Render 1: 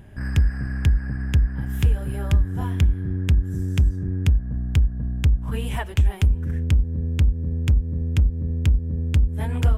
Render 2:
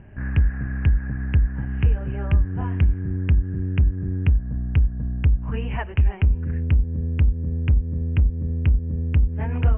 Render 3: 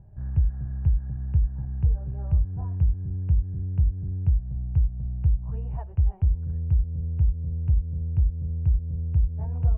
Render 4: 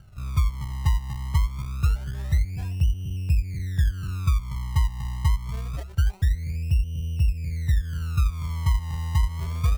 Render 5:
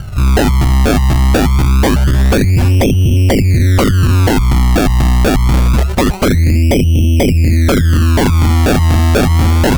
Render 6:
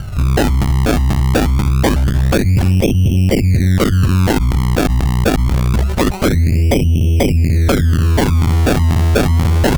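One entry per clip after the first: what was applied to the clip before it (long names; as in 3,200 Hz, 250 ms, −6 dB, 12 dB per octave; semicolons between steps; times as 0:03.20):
Butterworth low-pass 2,900 Hz 96 dB per octave
drawn EQ curve 150 Hz 0 dB, 240 Hz −14 dB, 780 Hz −5 dB, 2,100 Hz −28 dB; level −3.5 dB
sample-and-hold swept by an LFO 30×, swing 100% 0.25 Hz
sine wavefolder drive 16 dB, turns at −12 dBFS; level +5.5 dB
saturating transformer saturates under 90 Hz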